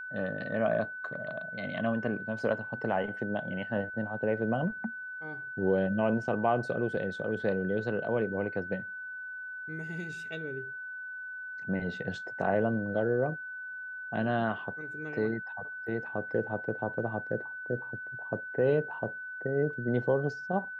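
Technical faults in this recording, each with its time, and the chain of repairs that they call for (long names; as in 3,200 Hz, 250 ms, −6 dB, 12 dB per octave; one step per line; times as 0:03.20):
whistle 1,500 Hz −38 dBFS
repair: notch filter 1,500 Hz, Q 30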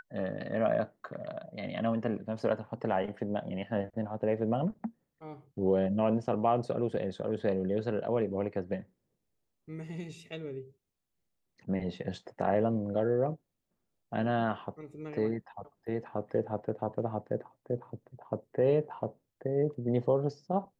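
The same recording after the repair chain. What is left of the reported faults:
none of them is left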